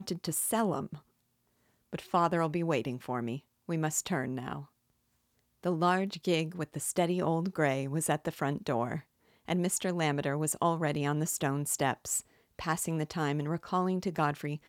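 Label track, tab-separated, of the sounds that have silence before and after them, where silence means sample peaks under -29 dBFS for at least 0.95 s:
1.940000	4.530000	sound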